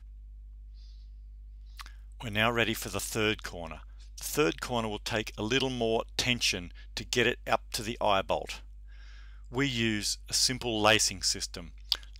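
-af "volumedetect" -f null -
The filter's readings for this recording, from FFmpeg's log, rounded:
mean_volume: -32.0 dB
max_volume: -9.7 dB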